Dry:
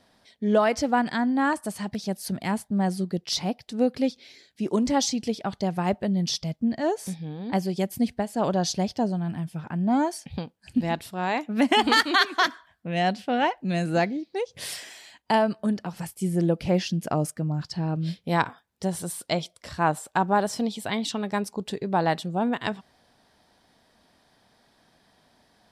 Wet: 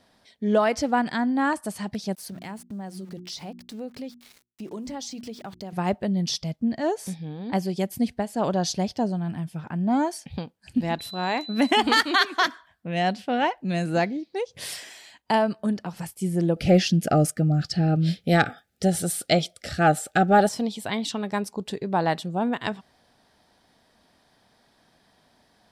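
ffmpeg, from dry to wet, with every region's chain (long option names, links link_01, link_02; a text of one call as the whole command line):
ffmpeg -i in.wav -filter_complex "[0:a]asettb=1/sr,asplit=3[link_01][link_02][link_03];[link_01]atrim=end=2.154[link_04];[link_02]atrim=start=2.15:end=5.73,asetpts=PTS-STARTPTS,afade=type=in:duration=0.004:curve=qsin,afade=type=out:start_time=3.576:duration=0.004:curve=qsin,aeval=exprs='val(0)*gte(abs(val(0)),0.00596)':channel_layout=same,bandreject=frequency=60:width_type=h:width=6,bandreject=frequency=120:width_type=h:width=6,bandreject=frequency=180:width_type=h:width=6,bandreject=frequency=240:width_type=h:width=6,bandreject=frequency=300:width_type=h:width=6,bandreject=frequency=360:width_type=h:width=6,acompressor=threshold=-37dB:ratio=2.5:attack=3.2:release=140:knee=1:detection=peak[link_05];[link_03]atrim=start=5.726[link_06];[link_04][link_05]acrossfade=duration=0.004:curve1=hsin:curve2=qsin[link_07];[link_07][link_06]acrossfade=duration=0.004:curve1=qsin:curve2=hsin,asettb=1/sr,asplit=3[link_08][link_09][link_10];[link_08]atrim=end=10.994[link_11];[link_09]atrim=start=10.99:end=11.71,asetpts=PTS-STARTPTS,afade=type=in:duration=0.004:curve=qsin,afade=type=out:start_time=0.716:duration=0.004:curve=qsin,highshelf=frequency=11000:gain=4,aeval=exprs='val(0)+0.0141*sin(2*PI*4000*n/s)':channel_layout=same[link_12];[link_10]atrim=start=11.706[link_13];[link_11][link_12]acrossfade=duration=0.004:curve1=hsin:curve2=qsin[link_14];[link_14][link_13]acrossfade=duration=0.004:curve1=qsin:curve2=hsin,asettb=1/sr,asplit=3[link_15][link_16][link_17];[link_15]atrim=end=16.564[link_18];[link_16]atrim=start=16.56:end=20.49,asetpts=PTS-STARTPTS,afade=type=in:duration=0.004:curve=qsin,afade=type=out:start_time=3.926:duration=0.004:curve=qsin,acontrast=52,asuperstop=centerf=1000:order=20:qfactor=2.9[link_19];[link_17]atrim=start=20.486[link_20];[link_18][link_19]acrossfade=duration=0.004:curve1=hsin:curve2=qsin[link_21];[link_21][link_20]acrossfade=duration=0.004:curve1=qsin:curve2=hsin" out.wav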